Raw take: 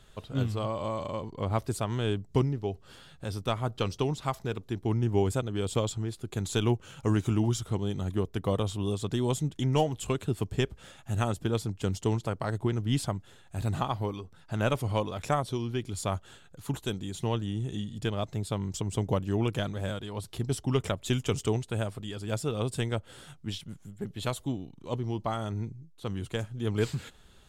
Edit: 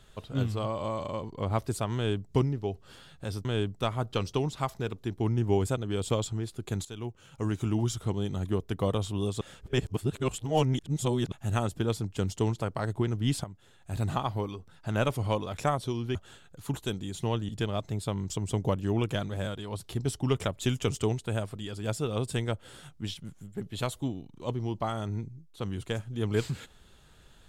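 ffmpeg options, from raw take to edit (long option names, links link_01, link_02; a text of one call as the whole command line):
ffmpeg -i in.wav -filter_complex "[0:a]asplit=9[link_01][link_02][link_03][link_04][link_05][link_06][link_07][link_08][link_09];[link_01]atrim=end=3.452[link_10];[link_02]atrim=start=1.948:end=2.302[link_11];[link_03]atrim=start=3.448:end=6.5,asetpts=PTS-STARTPTS,afade=type=out:start_time=3.048:duration=0.004:curve=hsin:silence=0.133352[link_12];[link_04]atrim=start=6.5:end=9.062,asetpts=PTS-STARTPTS,afade=type=in:duration=1.15:silence=0.133352[link_13];[link_05]atrim=start=9.058:end=10.972,asetpts=PTS-STARTPTS,areverse[link_14];[link_06]atrim=start=10.968:end=13.09,asetpts=PTS-STARTPTS,afade=type=out:start_time=2.118:duration=0.004:curve=hsin:silence=0.223872[link_15];[link_07]atrim=start=13.09:end=15.802,asetpts=PTS-STARTPTS,afade=type=in:duration=0.54:silence=0.223872[link_16];[link_08]atrim=start=16.148:end=17.492[link_17];[link_09]atrim=start=17.928[link_18];[link_10][link_11]acrossfade=duration=0.004:curve1=hsin:curve2=hsin[link_19];[link_12][link_13]concat=n=2:v=0:a=1[link_20];[link_19][link_20]acrossfade=duration=0.004:curve1=hsin:curve2=hsin[link_21];[link_21][link_14]acrossfade=duration=0.004:curve1=hsin:curve2=hsin[link_22];[link_15][link_16]concat=n=2:v=0:a=1[link_23];[link_22][link_23]acrossfade=duration=0.004:curve1=hsin:curve2=hsin[link_24];[link_24][link_17]acrossfade=duration=0.004:curve1=hsin:curve2=hsin[link_25];[link_25][link_18]acrossfade=duration=0.004:curve1=hsin:curve2=hsin" out.wav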